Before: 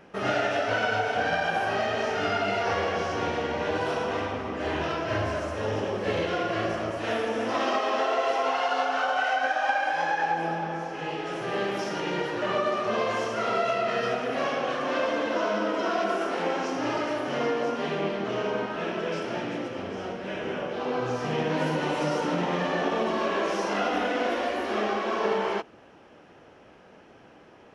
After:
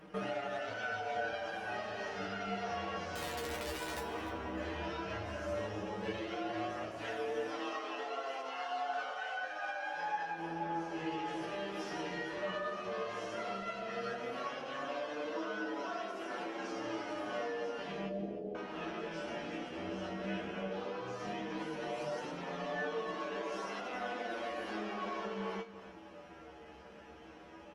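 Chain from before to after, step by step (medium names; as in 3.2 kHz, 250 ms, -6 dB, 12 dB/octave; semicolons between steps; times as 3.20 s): 18.08–18.55 s: steep low-pass 740 Hz 96 dB/octave; compression 6:1, threshold -36 dBFS, peak gain reduction 15 dB; 3.15–4.01 s: integer overflow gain 31 dB; feedback comb 65 Hz, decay 0.24 s, harmonics odd, mix 90%; flange 0.13 Hz, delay 6.3 ms, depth 7.1 ms, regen +9%; feedback delay 300 ms, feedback 21%, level -15 dB; trim +11 dB; Opus 32 kbps 48 kHz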